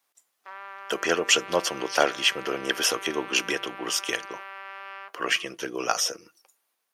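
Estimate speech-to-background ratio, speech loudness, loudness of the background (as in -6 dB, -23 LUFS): 14.5 dB, -25.5 LUFS, -40.0 LUFS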